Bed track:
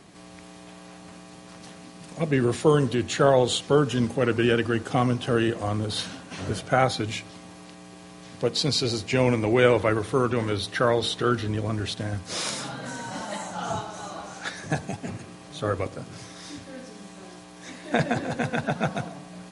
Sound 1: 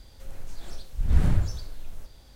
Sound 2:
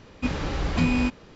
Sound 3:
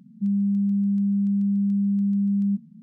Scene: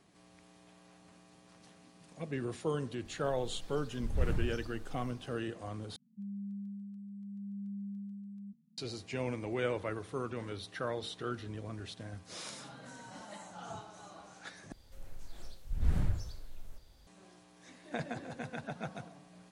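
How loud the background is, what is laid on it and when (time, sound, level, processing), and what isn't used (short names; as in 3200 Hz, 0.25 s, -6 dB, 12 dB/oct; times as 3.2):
bed track -15 dB
3.05 add 1 -11 dB
5.96 replace with 3 -15 dB + cascading flanger falling 0.76 Hz
14.72 replace with 1 -9 dB
not used: 2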